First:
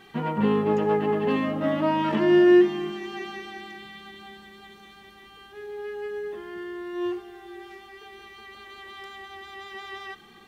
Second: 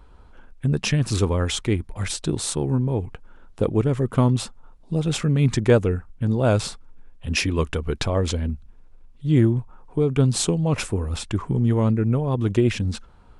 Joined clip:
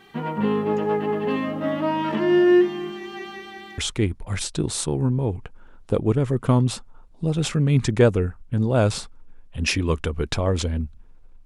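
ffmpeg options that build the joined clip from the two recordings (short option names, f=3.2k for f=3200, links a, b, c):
-filter_complex "[0:a]apad=whole_dur=11.45,atrim=end=11.45,atrim=end=3.782[a];[1:a]atrim=start=1.468:end=9.14[b];[a][b]acrossfade=d=0.004:c1=hsin:c2=hsin"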